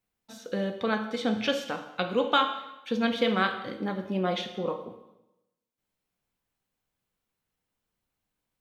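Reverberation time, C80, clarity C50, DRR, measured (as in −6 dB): 0.95 s, 11.5 dB, 9.5 dB, 6.0 dB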